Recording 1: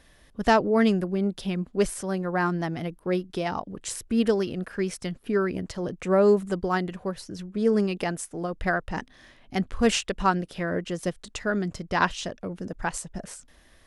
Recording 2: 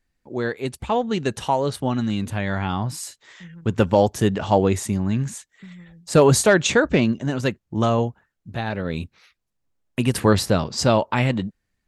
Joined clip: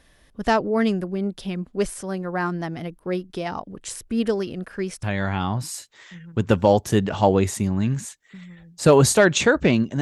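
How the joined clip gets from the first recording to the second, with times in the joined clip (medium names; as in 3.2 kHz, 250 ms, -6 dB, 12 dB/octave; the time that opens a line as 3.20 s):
recording 1
5.03 s: go over to recording 2 from 2.32 s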